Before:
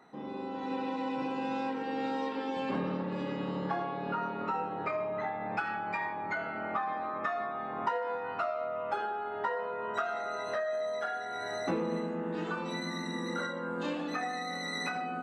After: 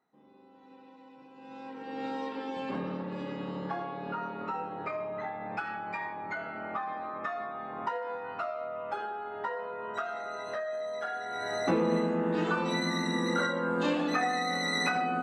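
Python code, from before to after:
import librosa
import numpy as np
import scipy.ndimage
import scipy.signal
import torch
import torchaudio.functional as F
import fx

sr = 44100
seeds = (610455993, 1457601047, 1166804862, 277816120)

y = fx.gain(x, sr, db=fx.line((1.31, -19.5), (1.52, -12.5), (2.05, -2.0), (10.88, -2.0), (11.9, 6.0)))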